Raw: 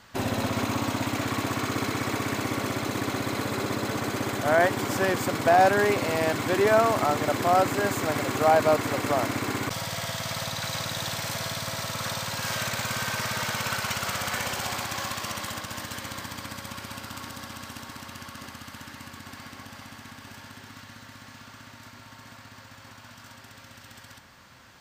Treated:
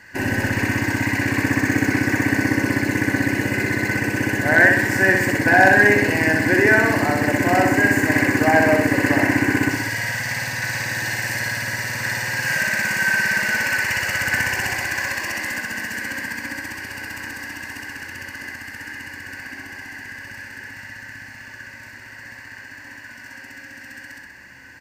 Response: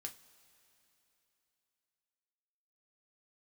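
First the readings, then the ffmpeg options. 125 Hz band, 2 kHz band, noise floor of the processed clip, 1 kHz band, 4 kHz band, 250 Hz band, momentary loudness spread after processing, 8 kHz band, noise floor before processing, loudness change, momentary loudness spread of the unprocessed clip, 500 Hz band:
+7.5 dB, +14.0 dB, −40 dBFS, +1.5 dB, +1.0 dB, +9.5 dB, 22 LU, +3.5 dB, −49 dBFS, +8.0 dB, 23 LU, +2.5 dB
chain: -filter_complex "[0:a]superequalizer=6b=1.78:10b=0.447:11b=3.98:12b=1.58:13b=0.316,asplit=2[link_01][link_02];[link_02]aecho=0:1:63|126|189|252|315|378|441:0.631|0.341|0.184|0.0994|0.0537|0.029|0.0156[link_03];[link_01][link_03]amix=inputs=2:normalize=0,asoftclip=type=hard:threshold=-4.5dB,bandreject=frequency=670:width=12,asplit=2[link_04][link_05];[link_05]adelay=190,highpass=300,lowpass=3400,asoftclip=type=hard:threshold=-11.5dB,volume=-16dB[link_06];[link_04][link_06]amix=inputs=2:normalize=0,volume=1.5dB"

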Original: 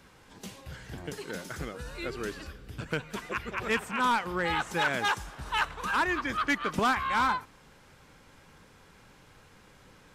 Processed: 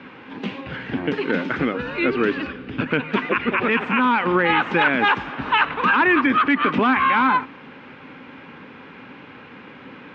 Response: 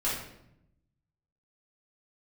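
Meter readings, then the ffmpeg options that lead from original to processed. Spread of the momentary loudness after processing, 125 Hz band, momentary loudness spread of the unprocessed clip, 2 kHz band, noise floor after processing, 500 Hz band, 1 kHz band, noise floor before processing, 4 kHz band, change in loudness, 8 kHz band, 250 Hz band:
13 LU, +8.0 dB, 16 LU, +11.0 dB, −42 dBFS, +12.0 dB, +9.5 dB, −57 dBFS, +7.0 dB, +10.5 dB, below −15 dB, +15.0 dB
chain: -af "highpass=180,equalizer=frequency=260:width_type=q:width=4:gain=10,equalizer=frequency=660:width_type=q:width=4:gain=-4,equalizer=frequency=2500:width_type=q:width=4:gain=4,lowpass=frequency=3000:width=0.5412,lowpass=frequency=3000:width=1.3066,alimiter=level_in=23.5dB:limit=-1dB:release=50:level=0:latency=1,volume=-8dB"

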